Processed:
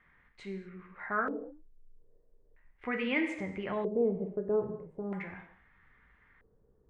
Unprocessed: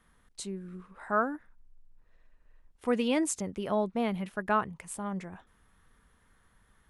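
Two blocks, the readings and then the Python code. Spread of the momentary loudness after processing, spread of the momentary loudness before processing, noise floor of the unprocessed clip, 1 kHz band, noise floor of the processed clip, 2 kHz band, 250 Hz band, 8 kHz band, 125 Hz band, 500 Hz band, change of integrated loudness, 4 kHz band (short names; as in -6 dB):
15 LU, 16 LU, -67 dBFS, -7.0 dB, -67 dBFS, +1.0 dB, -3.5 dB, under -25 dB, -2.5 dB, 0.0 dB, -2.5 dB, -5.5 dB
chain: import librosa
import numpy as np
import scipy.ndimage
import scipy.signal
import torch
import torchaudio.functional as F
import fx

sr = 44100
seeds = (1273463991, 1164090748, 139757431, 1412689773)

y = fx.rev_gated(x, sr, seeds[0], gate_ms=270, shape='falling', drr_db=3.5)
y = fx.filter_lfo_lowpass(y, sr, shape='square', hz=0.39, low_hz=450.0, high_hz=2100.0, q=4.9)
y = fx.dynamic_eq(y, sr, hz=820.0, q=0.76, threshold_db=-34.0, ratio=4.0, max_db=-6)
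y = y * 10.0 ** (-4.0 / 20.0)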